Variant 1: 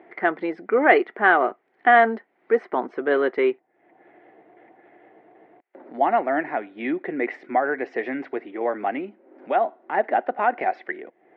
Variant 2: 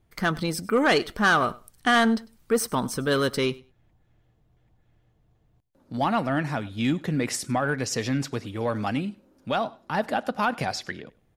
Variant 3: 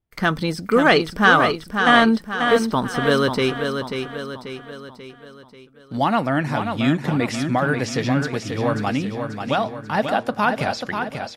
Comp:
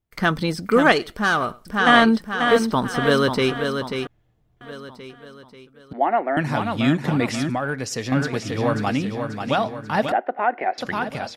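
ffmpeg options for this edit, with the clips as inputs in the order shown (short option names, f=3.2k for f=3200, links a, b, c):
-filter_complex "[1:a]asplit=3[a][b][c];[0:a]asplit=2[d][e];[2:a]asplit=6[f][g][h][i][j][k];[f]atrim=end=0.922[l];[a]atrim=start=0.918:end=1.652[m];[g]atrim=start=1.648:end=4.072[n];[b]atrim=start=4.068:end=4.612[o];[h]atrim=start=4.608:end=5.932[p];[d]atrim=start=5.928:end=6.372[q];[i]atrim=start=6.368:end=7.502[r];[c]atrim=start=7.498:end=8.122[s];[j]atrim=start=8.118:end=10.122[t];[e]atrim=start=10.118:end=10.782[u];[k]atrim=start=10.778[v];[l][m]acrossfade=d=0.004:c1=hsin:c2=hsin[w];[w][n]acrossfade=d=0.004:c1=hsin:c2=hsin[x];[x][o]acrossfade=d=0.004:c1=hsin:c2=hsin[y];[y][p]acrossfade=d=0.004:c1=hsin:c2=hsin[z];[z][q]acrossfade=d=0.004:c1=hsin:c2=hsin[aa];[aa][r]acrossfade=d=0.004:c1=hsin:c2=hsin[ab];[ab][s]acrossfade=d=0.004:c1=hsin:c2=hsin[ac];[ac][t]acrossfade=d=0.004:c1=hsin:c2=hsin[ad];[ad][u]acrossfade=d=0.004:c1=hsin:c2=hsin[ae];[ae][v]acrossfade=d=0.004:c1=hsin:c2=hsin"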